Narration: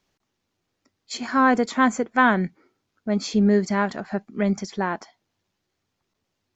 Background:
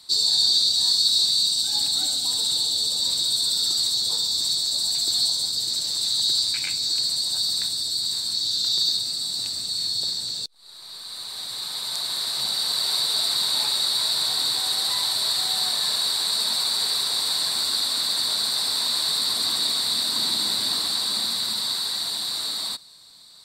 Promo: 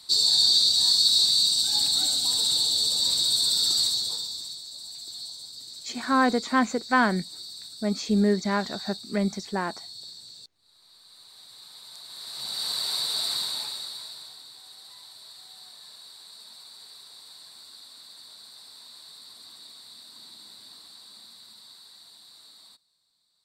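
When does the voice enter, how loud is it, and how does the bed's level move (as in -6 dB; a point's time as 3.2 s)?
4.75 s, -3.5 dB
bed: 3.83 s -0.5 dB
4.62 s -16.5 dB
12.05 s -16.5 dB
12.65 s -5 dB
13.35 s -5 dB
14.45 s -23.5 dB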